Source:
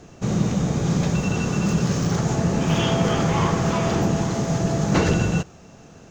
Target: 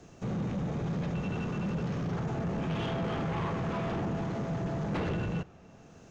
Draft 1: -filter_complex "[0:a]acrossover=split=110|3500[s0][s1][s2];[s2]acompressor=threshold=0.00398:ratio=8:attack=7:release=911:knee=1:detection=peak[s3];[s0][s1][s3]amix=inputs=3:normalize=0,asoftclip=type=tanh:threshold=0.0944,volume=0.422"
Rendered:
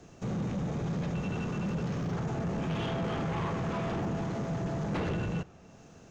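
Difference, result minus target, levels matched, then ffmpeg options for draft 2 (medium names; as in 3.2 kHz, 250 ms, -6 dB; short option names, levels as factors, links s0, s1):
compression: peak gain reduction -5.5 dB
-filter_complex "[0:a]acrossover=split=110|3500[s0][s1][s2];[s2]acompressor=threshold=0.00188:ratio=8:attack=7:release=911:knee=1:detection=peak[s3];[s0][s1][s3]amix=inputs=3:normalize=0,asoftclip=type=tanh:threshold=0.0944,volume=0.422"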